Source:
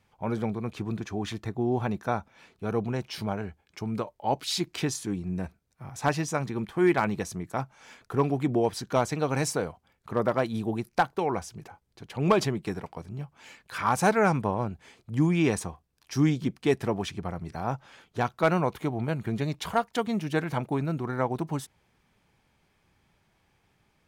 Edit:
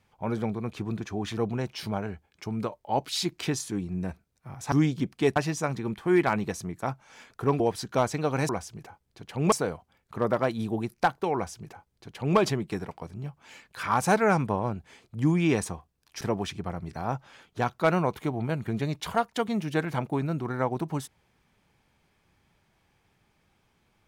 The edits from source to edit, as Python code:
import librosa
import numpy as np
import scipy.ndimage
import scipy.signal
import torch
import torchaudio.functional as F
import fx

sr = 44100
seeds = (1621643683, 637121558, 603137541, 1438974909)

y = fx.edit(x, sr, fx.cut(start_s=1.37, length_s=1.35),
    fx.cut(start_s=8.31, length_s=0.27),
    fx.duplicate(start_s=11.3, length_s=1.03, to_s=9.47),
    fx.move(start_s=16.16, length_s=0.64, to_s=6.07), tone=tone)